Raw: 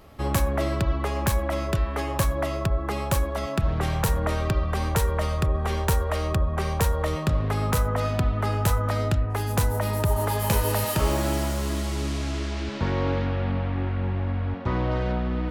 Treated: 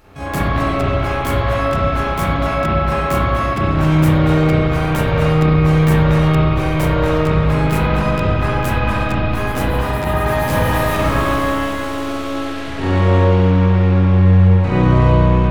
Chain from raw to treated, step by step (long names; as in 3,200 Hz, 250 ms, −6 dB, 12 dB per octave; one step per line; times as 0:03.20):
pitch-shifted copies added +4 semitones −7 dB, +12 semitones −2 dB
spring reverb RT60 2.3 s, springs 32/54 ms, chirp 45 ms, DRR −9 dB
level −3.5 dB